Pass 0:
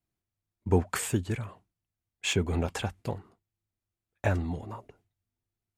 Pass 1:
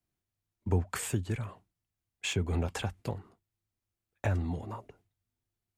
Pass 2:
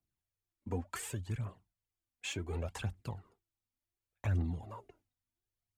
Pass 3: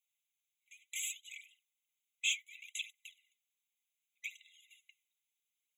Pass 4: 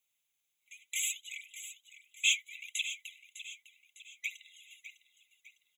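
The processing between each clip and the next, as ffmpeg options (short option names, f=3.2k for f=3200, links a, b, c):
-filter_complex "[0:a]acrossover=split=130[a][b];[b]acompressor=threshold=-33dB:ratio=2.5[c];[a][c]amix=inputs=2:normalize=0"
-af "aphaser=in_gain=1:out_gain=1:delay=4.2:decay=0.6:speed=0.68:type=triangular,volume=-8dB"
-af "afftfilt=real='re*eq(mod(floor(b*sr/1024/2000),2),1)':imag='im*eq(mod(floor(b*sr/1024/2000),2),1)':win_size=1024:overlap=0.75,volume=8.5dB"
-af "aecho=1:1:604|1208|1812|2416:0.237|0.102|0.0438|0.0189,volume=6dB"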